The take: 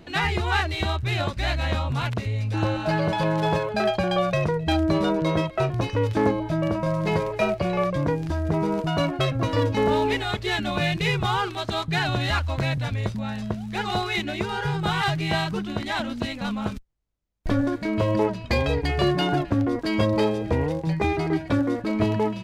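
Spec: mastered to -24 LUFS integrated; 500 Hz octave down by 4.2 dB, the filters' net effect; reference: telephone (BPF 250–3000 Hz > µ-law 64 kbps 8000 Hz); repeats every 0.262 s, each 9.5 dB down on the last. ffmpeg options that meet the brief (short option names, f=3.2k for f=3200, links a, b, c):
-af "highpass=250,lowpass=3k,equalizer=f=500:t=o:g=-5,aecho=1:1:262|524|786|1048:0.335|0.111|0.0365|0.012,volume=4.5dB" -ar 8000 -c:a pcm_mulaw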